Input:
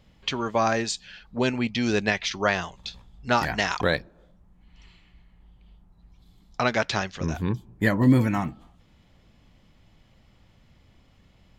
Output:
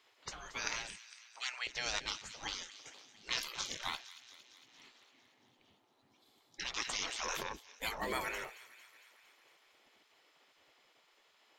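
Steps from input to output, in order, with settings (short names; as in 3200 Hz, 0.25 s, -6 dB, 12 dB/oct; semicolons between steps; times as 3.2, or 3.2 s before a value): spectral gate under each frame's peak -20 dB weak; 0.98–1.67 HPF 1300 Hz 12 dB/oct; thin delay 0.228 s, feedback 65%, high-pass 1900 Hz, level -14 dB; 6.78–7.43 fast leveller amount 70%; gain -1 dB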